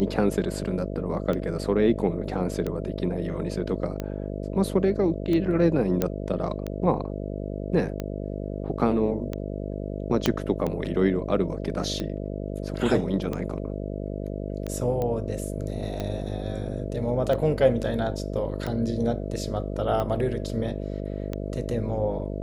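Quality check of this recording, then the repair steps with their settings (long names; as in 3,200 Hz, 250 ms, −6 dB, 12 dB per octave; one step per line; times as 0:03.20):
mains buzz 50 Hz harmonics 13 −32 dBFS
scratch tick 45 rpm −17 dBFS
0:06.02: click −10 dBFS
0:10.26: click −7 dBFS
0:15.02: click −17 dBFS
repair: click removal
hum removal 50 Hz, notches 13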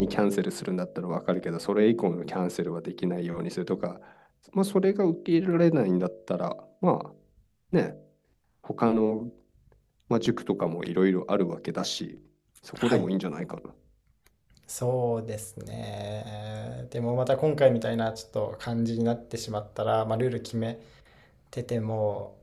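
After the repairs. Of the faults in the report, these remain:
0:10.26: click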